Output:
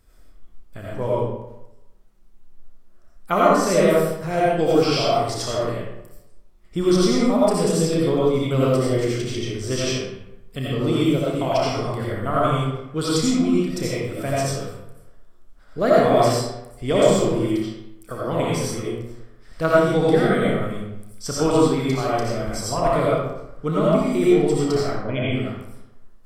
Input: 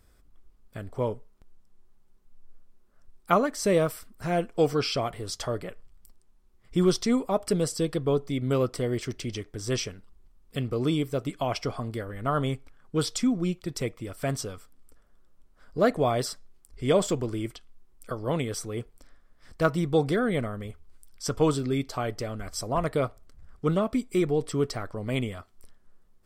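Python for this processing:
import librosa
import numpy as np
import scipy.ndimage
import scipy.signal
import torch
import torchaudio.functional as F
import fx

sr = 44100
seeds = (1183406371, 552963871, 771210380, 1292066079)

y = fx.spec_gate(x, sr, threshold_db=-30, keep='strong', at=(24.83, 25.34), fade=0.02)
y = fx.room_early_taps(y, sr, ms=(31, 59), db=(-9.0, -10.0))
y = fx.rev_freeverb(y, sr, rt60_s=0.91, hf_ratio=0.65, predelay_ms=45, drr_db=-6.0)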